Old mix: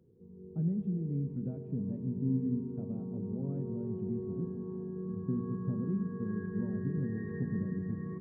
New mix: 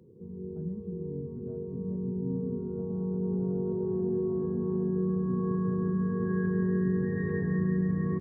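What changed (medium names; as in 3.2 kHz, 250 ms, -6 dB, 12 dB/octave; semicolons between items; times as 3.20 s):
speech -6.0 dB; background +10.5 dB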